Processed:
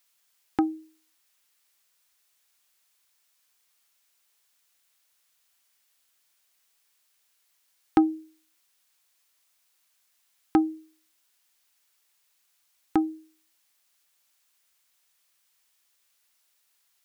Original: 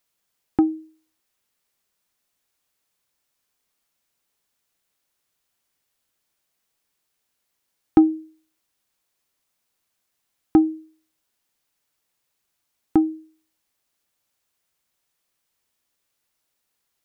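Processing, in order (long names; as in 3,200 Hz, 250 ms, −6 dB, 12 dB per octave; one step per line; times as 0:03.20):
tilt shelving filter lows −8 dB, about 650 Hz
level −1.5 dB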